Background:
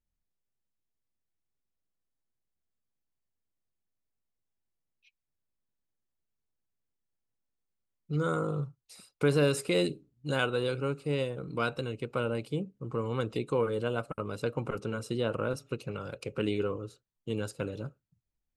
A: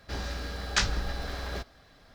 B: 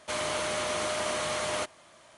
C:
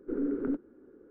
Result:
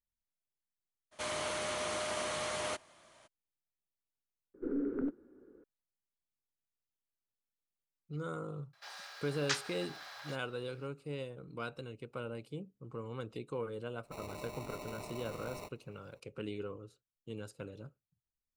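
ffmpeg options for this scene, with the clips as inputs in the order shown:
-filter_complex "[2:a]asplit=2[a][b];[0:a]volume=-10.5dB[c];[1:a]highpass=f=750:w=0.5412,highpass=f=750:w=1.3066[d];[b]acrusher=samples=27:mix=1:aa=0.000001[e];[c]asplit=2[f][g];[f]atrim=end=4.544[h];[3:a]atrim=end=1.1,asetpts=PTS-STARTPTS,volume=-4dB[i];[g]atrim=start=5.636[j];[a]atrim=end=2.17,asetpts=PTS-STARTPTS,volume=-6dB,afade=t=in:d=0.02,afade=t=out:st=2.15:d=0.02,adelay=1110[k];[d]atrim=end=2.14,asetpts=PTS-STARTPTS,volume=-8dB,afade=t=in:d=0.004:c=hsin,afade=t=out:st=2.136:d=0.004:c=hsin,adelay=8730[l];[e]atrim=end=2.17,asetpts=PTS-STARTPTS,volume=-15dB,afade=t=in:d=0.004:c=hsin,afade=t=out:st=2.166:d=0.004:c=hsin,adelay=14030[m];[h][i]acrossfade=d=0.004:c1=hsin:c2=hsin[n];[n][j]acrossfade=d=0.004:c1=hsin:c2=hsin[o];[o][k][l][m]amix=inputs=4:normalize=0"

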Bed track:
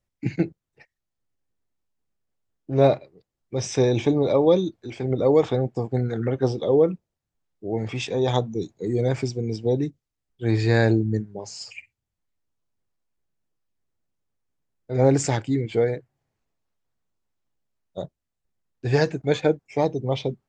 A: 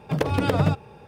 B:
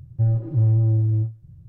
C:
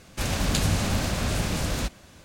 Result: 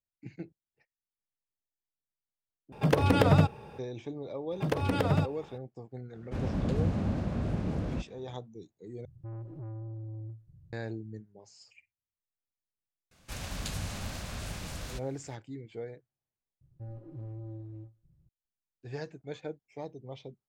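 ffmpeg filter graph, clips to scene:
-filter_complex "[1:a]asplit=2[a][b];[3:a]asplit=2[c][d];[2:a]asplit=2[e][f];[0:a]volume=-19dB[g];[c]bandpass=f=190:t=q:w=0.53:csg=0[h];[e]asoftclip=type=tanh:threshold=-28dB[i];[d]equalizer=f=310:t=o:w=1.8:g=-4.5[j];[f]equalizer=f=100:w=1.6:g=-13.5[k];[g]asplit=4[l][m][n][o];[l]atrim=end=2.724[p];[a]atrim=end=1.07,asetpts=PTS-STARTPTS,volume=-1dB[q];[m]atrim=start=3.786:end=9.054[r];[i]atrim=end=1.68,asetpts=PTS-STARTPTS,volume=-11dB[s];[n]atrim=start=10.726:end=16.614[t];[k]atrim=end=1.68,asetpts=PTS-STARTPTS,volume=-13dB[u];[o]atrim=start=18.286[v];[b]atrim=end=1.07,asetpts=PTS-STARTPTS,volume=-6dB,afade=t=in:d=0.004:c=hsin,afade=t=out:st=1.066:d=0.004:c=hsin,adelay=4510[w];[h]atrim=end=2.24,asetpts=PTS-STARTPTS,volume=-2dB,afade=t=in:d=0.004:c=hsin,afade=t=out:st=2.236:d=0.004:c=hsin,adelay=6140[x];[j]atrim=end=2.24,asetpts=PTS-STARTPTS,volume=-11.5dB,afade=t=in:d=0.004:c=hsin,afade=t=out:st=2.236:d=0.004:c=hsin,adelay=13110[y];[p][q]acrossfade=d=0.004:c1=hsin:c2=hsin[z];[z][r]acrossfade=d=0.004:c1=hsin:c2=hsin[aa];[aa][s]acrossfade=d=0.004:c1=hsin:c2=hsin[ab];[ab][t]acrossfade=d=0.004:c1=hsin:c2=hsin[ac];[ac][u]acrossfade=d=0.004:c1=hsin:c2=hsin[ad];[ad][v]acrossfade=d=0.004:c1=hsin:c2=hsin[ae];[ae][w][x][y]amix=inputs=4:normalize=0"

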